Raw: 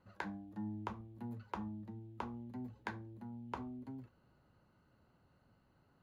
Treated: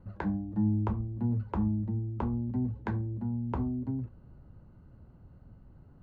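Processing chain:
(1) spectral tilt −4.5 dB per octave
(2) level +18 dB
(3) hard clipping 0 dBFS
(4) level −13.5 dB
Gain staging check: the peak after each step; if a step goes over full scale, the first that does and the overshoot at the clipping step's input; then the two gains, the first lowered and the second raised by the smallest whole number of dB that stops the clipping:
−23.0, −5.0, −5.0, −18.5 dBFS
no step passes full scale

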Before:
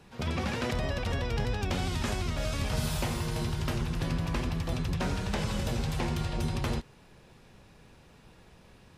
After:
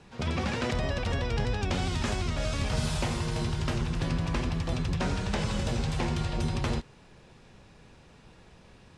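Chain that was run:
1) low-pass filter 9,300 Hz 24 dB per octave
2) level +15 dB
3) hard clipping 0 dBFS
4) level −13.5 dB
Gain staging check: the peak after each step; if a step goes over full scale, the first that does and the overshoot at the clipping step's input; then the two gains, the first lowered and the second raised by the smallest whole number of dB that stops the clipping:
−19.0, −4.0, −4.0, −17.5 dBFS
no step passes full scale

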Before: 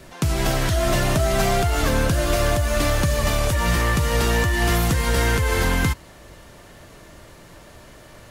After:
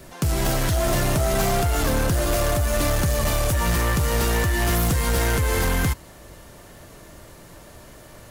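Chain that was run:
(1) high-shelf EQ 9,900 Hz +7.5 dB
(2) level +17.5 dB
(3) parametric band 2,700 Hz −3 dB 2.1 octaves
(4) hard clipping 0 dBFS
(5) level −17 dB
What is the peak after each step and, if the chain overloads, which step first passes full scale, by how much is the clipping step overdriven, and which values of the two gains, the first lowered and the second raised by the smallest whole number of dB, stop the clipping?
−8.5, +9.0, +8.5, 0.0, −17.0 dBFS
step 2, 8.5 dB
step 2 +8.5 dB, step 5 −8 dB

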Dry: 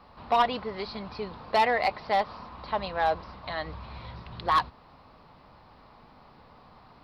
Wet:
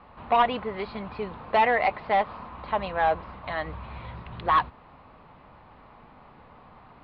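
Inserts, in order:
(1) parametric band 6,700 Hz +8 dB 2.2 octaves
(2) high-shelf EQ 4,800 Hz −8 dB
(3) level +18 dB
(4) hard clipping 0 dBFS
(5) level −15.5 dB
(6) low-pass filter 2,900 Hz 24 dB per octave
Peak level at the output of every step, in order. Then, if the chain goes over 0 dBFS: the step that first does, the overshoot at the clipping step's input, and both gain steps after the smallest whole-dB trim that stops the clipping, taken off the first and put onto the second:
−11.0, −14.0, +4.0, 0.0, −15.5, −14.0 dBFS
step 3, 4.0 dB
step 3 +14 dB, step 5 −11.5 dB

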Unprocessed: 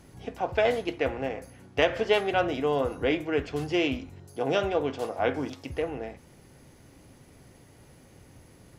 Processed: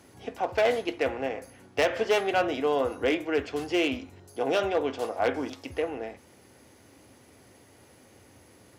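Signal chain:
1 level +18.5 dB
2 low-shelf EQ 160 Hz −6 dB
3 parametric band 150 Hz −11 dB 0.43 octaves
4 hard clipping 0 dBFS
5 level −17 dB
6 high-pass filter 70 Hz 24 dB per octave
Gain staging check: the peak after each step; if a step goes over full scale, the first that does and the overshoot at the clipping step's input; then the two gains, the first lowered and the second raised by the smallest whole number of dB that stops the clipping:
+10.0, +10.0, +10.0, 0.0, −17.0, −14.0 dBFS
step 1, 10.0 dB
step 1 +8.5 dB, step 5 −7 dB

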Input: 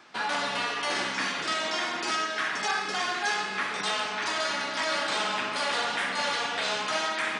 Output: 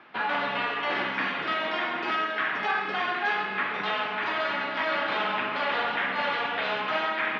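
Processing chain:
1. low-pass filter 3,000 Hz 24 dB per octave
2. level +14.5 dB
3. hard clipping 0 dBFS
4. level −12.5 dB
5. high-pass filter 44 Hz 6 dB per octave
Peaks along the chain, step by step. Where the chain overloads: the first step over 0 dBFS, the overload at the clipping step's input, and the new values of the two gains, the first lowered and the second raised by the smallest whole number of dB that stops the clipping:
−16.5, −2.0, −2.0, −14.5, −14.5 dBFS
no step passes full scale

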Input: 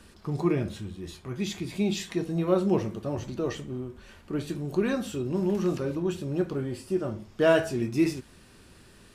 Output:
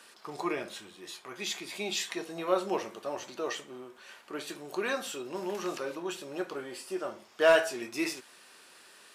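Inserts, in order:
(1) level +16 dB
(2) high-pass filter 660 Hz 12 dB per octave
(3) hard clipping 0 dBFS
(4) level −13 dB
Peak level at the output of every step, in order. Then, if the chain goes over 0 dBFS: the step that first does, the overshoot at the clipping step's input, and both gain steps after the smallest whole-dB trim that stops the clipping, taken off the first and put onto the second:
+5.5, +4.5, 0.0, −13.0 dBFS
step 1, 4.5 dB
step 1 +11 dB, step 4 −8 dB

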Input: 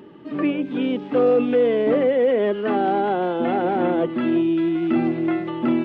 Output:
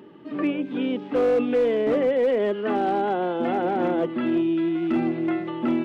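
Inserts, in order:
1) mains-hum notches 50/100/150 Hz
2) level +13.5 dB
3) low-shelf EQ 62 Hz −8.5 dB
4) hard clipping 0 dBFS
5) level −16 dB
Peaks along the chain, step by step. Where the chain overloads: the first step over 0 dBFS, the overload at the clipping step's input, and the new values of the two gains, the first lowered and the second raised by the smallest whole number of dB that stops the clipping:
−9.0, +4.5, +4.5, 0.0, −16.0 dBFS
step 2, 4.5 dB
step 2 +8.5 dB, step 5 −11 dB

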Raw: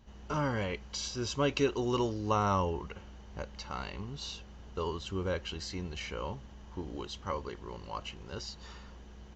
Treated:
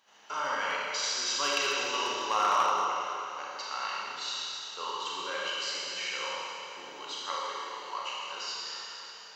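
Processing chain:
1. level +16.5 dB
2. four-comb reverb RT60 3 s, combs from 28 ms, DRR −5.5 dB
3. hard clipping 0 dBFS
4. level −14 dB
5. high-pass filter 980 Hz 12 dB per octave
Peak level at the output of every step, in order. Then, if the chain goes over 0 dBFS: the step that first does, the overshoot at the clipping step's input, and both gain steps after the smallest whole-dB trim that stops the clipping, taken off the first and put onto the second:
+0.5, +6.0, 0.0, −14.0, −14.0 dBFS
step 1, 6.0 dB
step 1 +10.5 dB, step 4 −8 dB

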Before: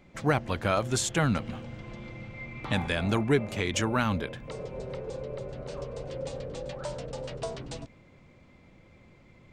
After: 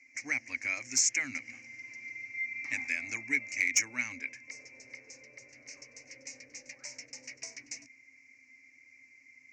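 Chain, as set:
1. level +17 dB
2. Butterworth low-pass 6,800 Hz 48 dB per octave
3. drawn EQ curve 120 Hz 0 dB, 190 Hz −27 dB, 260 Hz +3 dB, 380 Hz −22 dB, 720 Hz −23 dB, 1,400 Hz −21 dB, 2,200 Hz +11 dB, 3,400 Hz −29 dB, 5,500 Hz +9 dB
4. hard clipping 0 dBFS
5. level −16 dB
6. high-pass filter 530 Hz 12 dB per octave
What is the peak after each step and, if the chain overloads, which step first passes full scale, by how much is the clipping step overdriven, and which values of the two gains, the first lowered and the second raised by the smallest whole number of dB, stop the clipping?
+6.0, +6.0, +4.5, 0.0, −16.0, −14.5 dBFS
step 1, 4.5 dB
step 1 +12 dB, step 5 −11 dB

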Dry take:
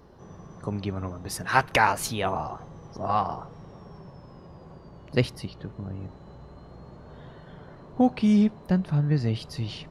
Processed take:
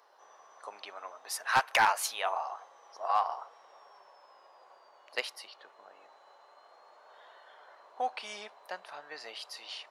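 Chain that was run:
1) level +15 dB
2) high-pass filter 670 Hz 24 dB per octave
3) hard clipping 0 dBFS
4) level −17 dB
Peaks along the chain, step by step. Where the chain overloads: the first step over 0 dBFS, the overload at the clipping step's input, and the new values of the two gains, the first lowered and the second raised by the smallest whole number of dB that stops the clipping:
+10.0, +9.0, 0.0, −17.0 dBFS
step 1, 9.0 dB
step 1 +6 dB, step 4 −8 dB

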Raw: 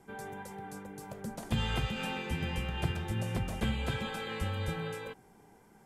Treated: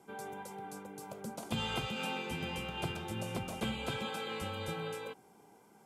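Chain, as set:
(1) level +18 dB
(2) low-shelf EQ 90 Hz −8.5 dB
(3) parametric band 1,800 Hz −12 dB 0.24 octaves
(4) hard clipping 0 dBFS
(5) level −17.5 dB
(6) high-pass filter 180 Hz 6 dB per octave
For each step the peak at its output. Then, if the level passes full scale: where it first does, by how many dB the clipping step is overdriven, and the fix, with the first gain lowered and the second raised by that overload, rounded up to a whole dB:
−1.0, −2.5, −2.5, −2.5, −20.0, −23.0 dBFS
no step passes full scale

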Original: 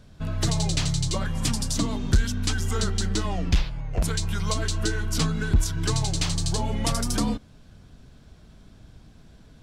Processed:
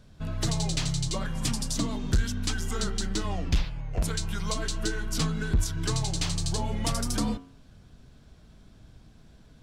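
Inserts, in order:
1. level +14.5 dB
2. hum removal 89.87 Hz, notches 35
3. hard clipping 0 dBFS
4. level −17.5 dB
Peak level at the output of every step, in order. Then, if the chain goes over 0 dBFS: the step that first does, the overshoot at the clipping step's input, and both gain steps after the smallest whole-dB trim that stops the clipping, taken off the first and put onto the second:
+3.0, +3.5, 0.0, −17.5 dBFS
step 1, 3.5 dB
step 1 +10.5 dB, step 4 −13.5 dB

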